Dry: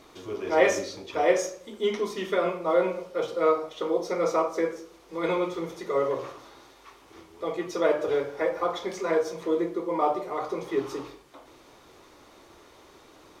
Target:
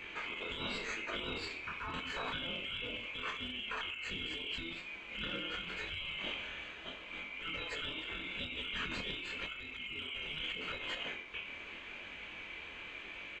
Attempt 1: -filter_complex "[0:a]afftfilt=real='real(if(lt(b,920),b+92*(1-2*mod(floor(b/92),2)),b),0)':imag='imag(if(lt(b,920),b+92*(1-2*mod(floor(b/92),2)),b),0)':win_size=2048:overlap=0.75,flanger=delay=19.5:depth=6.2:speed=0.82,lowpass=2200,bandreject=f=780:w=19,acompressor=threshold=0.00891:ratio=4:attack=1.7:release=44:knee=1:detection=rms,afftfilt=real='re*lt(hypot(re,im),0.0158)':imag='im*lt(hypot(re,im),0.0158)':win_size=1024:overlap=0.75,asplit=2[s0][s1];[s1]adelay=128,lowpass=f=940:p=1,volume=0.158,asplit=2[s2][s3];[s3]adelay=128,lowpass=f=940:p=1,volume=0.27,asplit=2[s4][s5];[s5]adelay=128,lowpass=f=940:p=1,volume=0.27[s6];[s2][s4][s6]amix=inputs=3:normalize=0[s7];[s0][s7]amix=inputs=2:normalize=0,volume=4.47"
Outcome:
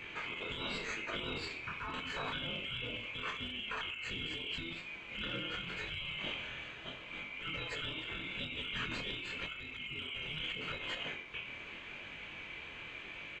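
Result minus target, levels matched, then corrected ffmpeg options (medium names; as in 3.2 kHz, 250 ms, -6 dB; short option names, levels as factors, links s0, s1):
125 Hz band +4.0 dB
-filter_complex "[0:a]afftfilt=real='real(if(lt(b,920),b+92*(1-2*mod(floor(b/92),2)),b),0)':imag='imag(if(lt(b,920),b+92*(1-2*mod(floor(b/92),2)),b),0)':win_size=2048:overlap=0.75,flanger=delay=19.5:depth=6.2:speed=0.82,lowpass=2200,bandreject=f=780:w=19,acompressor=threshold=0.00891:ratio=4:attack=1.7:release=44:knee=1:detection=rms,equalizer=f=130:w=3.1:g=-13.5,afftfilt=real='re*lt(hypot(re,im),0.0158)':imag='im*lt(hypot(re,im),0.0158)':win_size=1024:overlap=0.75,asplit=2[s0][s1];[s1]adelay=128,lowpass=f=940:p=1,volume=0.158,asplit=2[s2][s3];[s3]adelay=128,lowpass=f=940:p=1,volume=0.27,asplit=2[s4][s5];[s5]adelay=128,lowpass=f=940:p=1,volume=0.27[s6];[s2][s4][s6]amix=inputs=3:normalize=0[s7];[s0][s7]amix=inputs=2:normalize=0,volume=4.47"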